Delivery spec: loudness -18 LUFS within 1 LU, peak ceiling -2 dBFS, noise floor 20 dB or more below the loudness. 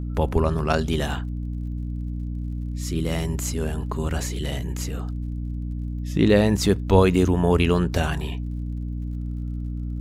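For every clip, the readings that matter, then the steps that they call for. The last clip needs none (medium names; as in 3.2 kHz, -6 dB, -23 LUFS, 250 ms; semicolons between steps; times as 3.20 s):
tick rate 39 per s; hum 60 Hz; highest harmonic 300 Hz; hum level -26 dBFS; loudness -24.5 LUFS; peak level -4.5 dBFS; loudness target -18.0 LUFS
-> de-click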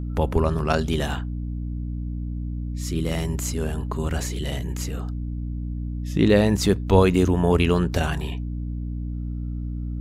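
tick rate 0.10 per s; hum 60 Hz; highest harmonic 300 Hz; hum level -26 dBFS
-> de-hum 60 Hz, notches 5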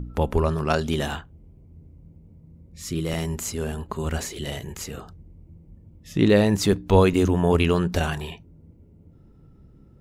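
hum not found; loudness -23.5 LUFS; peak level -5.0 dBFS; loudness target -18.0 LUFS
-> trim +5.5 dB; peak limiter -2 dBFS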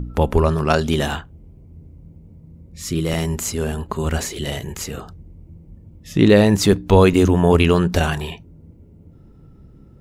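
loudness -18.0 LUFS; peak level -2.0 dBFS; noise floor -47 dBFS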